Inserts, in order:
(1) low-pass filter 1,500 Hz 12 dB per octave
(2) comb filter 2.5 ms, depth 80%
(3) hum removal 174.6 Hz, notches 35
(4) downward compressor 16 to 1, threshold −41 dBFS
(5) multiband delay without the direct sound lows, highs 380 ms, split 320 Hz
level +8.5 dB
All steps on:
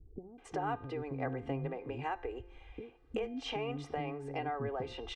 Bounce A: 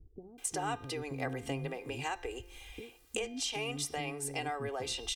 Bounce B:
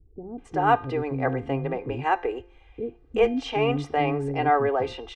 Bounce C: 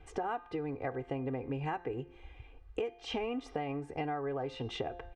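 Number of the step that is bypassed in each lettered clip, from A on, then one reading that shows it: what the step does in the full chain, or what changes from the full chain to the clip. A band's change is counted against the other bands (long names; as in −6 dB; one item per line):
1, 4 kHz band +9.0 dB
4, average gain reduction 10.0 dB
5, echo-to-direct ratio 20.5 dB to none audible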